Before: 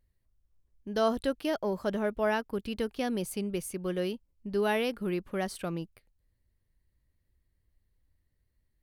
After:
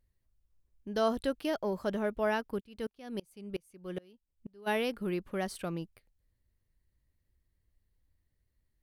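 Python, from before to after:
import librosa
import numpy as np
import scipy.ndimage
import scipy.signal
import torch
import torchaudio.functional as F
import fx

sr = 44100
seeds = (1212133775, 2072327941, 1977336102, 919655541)

y = fx.tremolo_decay(x, sr, direction='swelling', hz=fx.line((2.59, 3.5), (4.66, 1.8)), depth_db=30, at=(2.59, 4.66), fade=0.02)
y = y * librosa.db_to_amplitude(-2.0)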